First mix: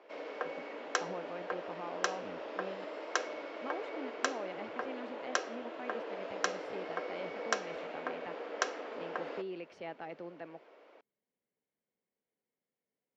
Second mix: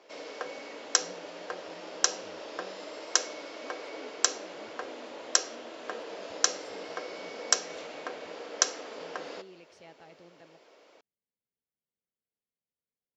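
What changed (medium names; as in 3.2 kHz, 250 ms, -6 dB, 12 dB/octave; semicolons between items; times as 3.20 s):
speech -10.5 dB; master: remove three-band isolator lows -13 dB, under 180 Hz, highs -19 dB, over 2.9 kHz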